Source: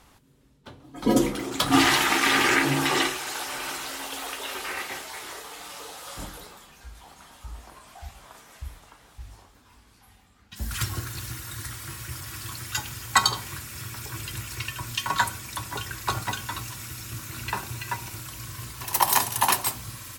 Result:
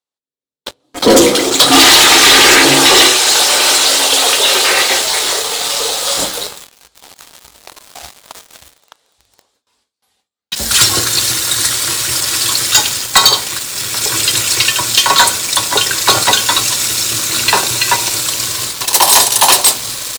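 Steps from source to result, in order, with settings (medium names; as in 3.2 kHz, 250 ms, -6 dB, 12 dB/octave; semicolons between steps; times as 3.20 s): high-pass 340 Hz 6 dB/octave; level rider gain up to 7.5 dB; gate with hold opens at -41 dBFS; ten-band graphic EQ 500 Hz +10 dB, 4 kHz +11 dB, 8 kHz +9 dB; waveshaping leveller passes 5; trim -9 dB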